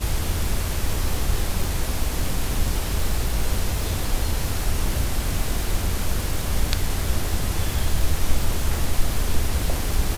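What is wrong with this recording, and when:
crackle 230/s -27 dBFS

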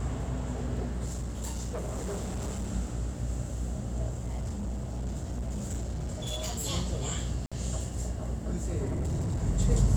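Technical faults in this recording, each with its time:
buzz 60 Hz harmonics 14 -35 dBFS
1.05–2.71 clipped -30.5 dBFS
4.09–6.65 clipped -30 dBFS
7.46–7.52 gap 56 ms
8.88–9.43 clipped -27 dBFS

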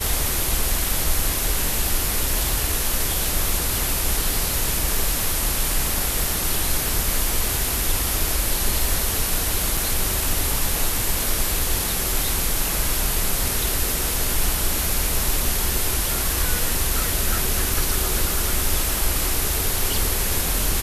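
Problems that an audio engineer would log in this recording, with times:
9.77 gap 3.4 ms

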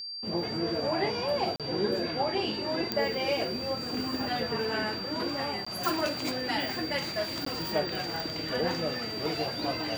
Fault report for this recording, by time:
tone 4700 Hz -36 dBFS
1.56–1.6 gap 37 ms
2.92 pop -13 dBFS
5.65–5.67 gap 15 ms
7.45–7.46 gap 14 ms

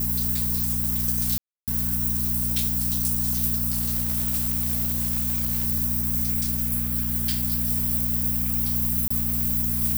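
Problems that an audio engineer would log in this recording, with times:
hum 60 Hz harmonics 4 -29 dBFS
1.38–1.68 gap 0.297 s
3.71–5.68 clipped -19.5 dBFS
9.08–9.11 gap 25 ms

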